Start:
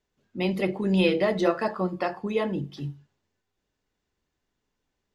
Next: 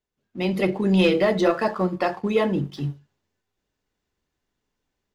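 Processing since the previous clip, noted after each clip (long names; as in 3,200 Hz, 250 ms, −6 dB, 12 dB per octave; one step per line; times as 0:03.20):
leveller curve on the samples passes 1
automatic gain control gain up to 8 dB
level −5.5 dB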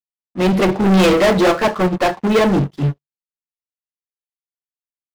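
high-shelf EQ 3,400 Hz −8 dB
leveller curve on the samples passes 5
expander for the loud parts 2.5 to 1, over −30 dBFS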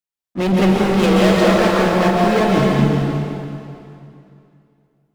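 brickwall limiter −17.5 dBFS, peak gain reduction 8.5 dB
dense smooth reverb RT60 2.6 s, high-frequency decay 0.9×, pre-delay 115 ms, DRR −3 dB
level +2 dB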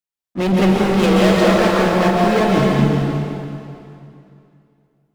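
no processing that can be heard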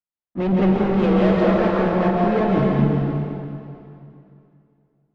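head-to-tape spacing loss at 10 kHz 34 dB
level −2 dB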